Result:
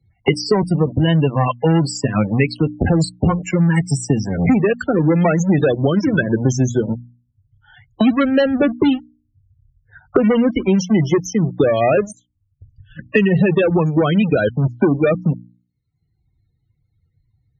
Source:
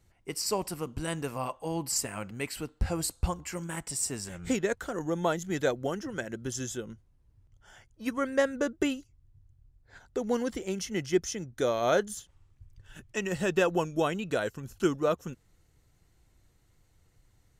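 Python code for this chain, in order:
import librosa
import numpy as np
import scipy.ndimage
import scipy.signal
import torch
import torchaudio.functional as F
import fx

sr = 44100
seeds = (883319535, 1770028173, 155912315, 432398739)

y = fx.bin_expand(x, sr, power=1.5)
y = fx.rider(y, sr, range_db=3, speed_s=2.0)
y = scipy.signal.sosfilt(scipy.signal.butter(2, 5200.0, 'lowpass', fs=sr, output='sos'), y)
y = fx.low_shelf(y, sr, hz=430.0, db=7.0)
y = fx.leveller(y, sr, passes=5)
y = fx.dynamic_eq(y, sr, hz=1100.0, q=1.0, threshold_db=-32.0, ratio=4.0, max_db=-5)
y = fx.spec_topn(y, sr, count=32)
y = scipy.signal.sosfilt(scipy.signal.butter(2, 57.0, 'highpass', fs=sr, output='sos'), y)
y = fx.hum_notches(y, sr, base_hz=60, count=5)
y = fx.band_squash(y, sr, depth_pct=100)
y = F.gain(torch.from_numpy(y), 2.0).numpy()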